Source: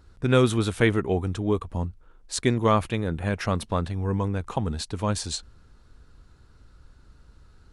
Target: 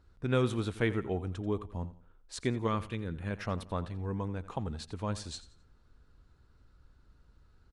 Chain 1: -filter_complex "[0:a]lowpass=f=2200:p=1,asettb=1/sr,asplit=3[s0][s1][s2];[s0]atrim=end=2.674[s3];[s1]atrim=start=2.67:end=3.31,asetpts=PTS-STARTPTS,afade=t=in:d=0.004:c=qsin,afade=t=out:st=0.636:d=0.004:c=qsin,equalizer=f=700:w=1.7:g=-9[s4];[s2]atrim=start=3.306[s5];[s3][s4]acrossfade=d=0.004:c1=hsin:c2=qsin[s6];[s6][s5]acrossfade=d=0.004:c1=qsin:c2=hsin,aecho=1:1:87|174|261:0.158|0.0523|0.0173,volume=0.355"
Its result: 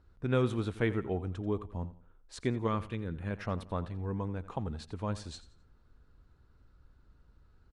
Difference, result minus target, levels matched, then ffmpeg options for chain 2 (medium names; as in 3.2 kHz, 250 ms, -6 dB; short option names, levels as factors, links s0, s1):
4 kHz band -4.0 dB
-filter_complex "[0:a]lowpass=f=4900:p=1,asettb=1/sr,asplit=3[s0][s1][s2];[s0]atrim=end=2.674[s3];[s1]atrim=start=2.67:end=3.31,asetpts=PTS-STARTPTS,afade=t=in:d=0.004:c=qsin,afade=t=out:st=0.636:d=0.004:c=qsin,equalizer=f=700:w=1.7:g=-9[s4];[s2]atrim=start=3.306[s5];[s3][s4]acrossfade=d=0.004:c1=hsin:c2=qsin[s6];[s6][s5]acrossfade=d=0.004:c1=qsin:c2=hsin,aecho=1:1:87|174|261:0.158|0.0523|0.0173,volume=0.355"